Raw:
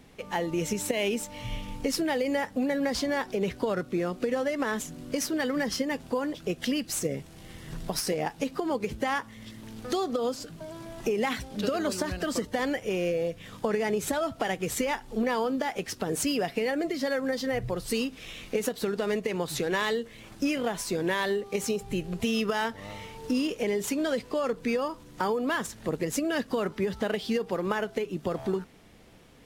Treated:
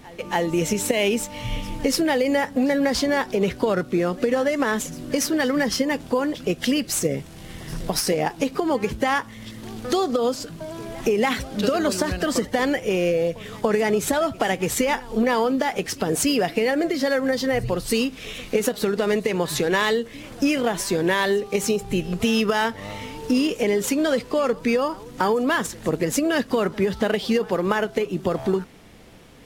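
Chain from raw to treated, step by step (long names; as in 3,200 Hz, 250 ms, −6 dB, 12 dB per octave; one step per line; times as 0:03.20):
echo ahead of the sound 285 ms −21.5 dB
level +7 dB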